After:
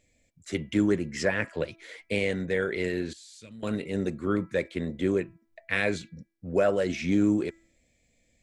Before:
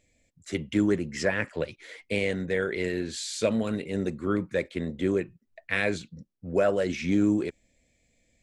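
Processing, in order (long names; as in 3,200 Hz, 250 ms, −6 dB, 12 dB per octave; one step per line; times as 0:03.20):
hum removal 330.9 Hz, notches 7
0:03.13–0:03.63: guitar amp tone stack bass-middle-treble 6-0-2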